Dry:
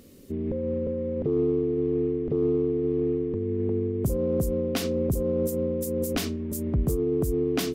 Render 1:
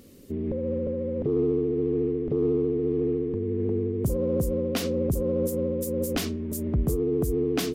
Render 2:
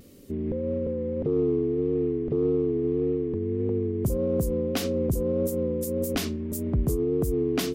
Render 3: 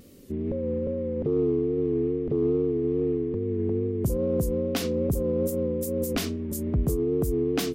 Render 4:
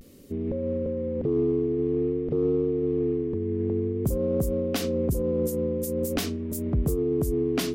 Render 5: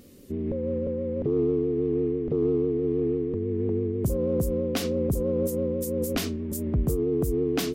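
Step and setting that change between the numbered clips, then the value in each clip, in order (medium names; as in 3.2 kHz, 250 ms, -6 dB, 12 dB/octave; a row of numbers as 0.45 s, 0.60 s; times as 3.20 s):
vibrato, rate: 14 Hz, 1.7 Hz, 2.4 Hz, 0.5 Hz, 6.1 Hz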